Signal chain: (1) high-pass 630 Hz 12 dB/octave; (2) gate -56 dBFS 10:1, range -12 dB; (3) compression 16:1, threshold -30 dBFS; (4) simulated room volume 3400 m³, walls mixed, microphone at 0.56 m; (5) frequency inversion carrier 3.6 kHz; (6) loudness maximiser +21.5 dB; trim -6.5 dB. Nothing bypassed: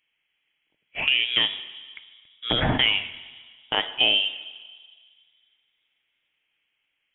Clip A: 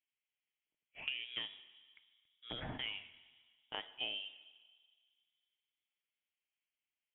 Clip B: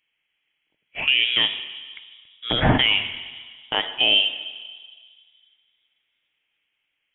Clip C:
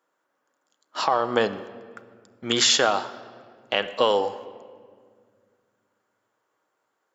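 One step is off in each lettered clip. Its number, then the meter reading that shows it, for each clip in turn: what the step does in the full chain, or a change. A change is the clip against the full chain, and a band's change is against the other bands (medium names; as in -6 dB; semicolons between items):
6, crest factor change +5.0 dB; 3, mean gain reduction 4.0 dB; 5, 500 Hz band +15.0 dB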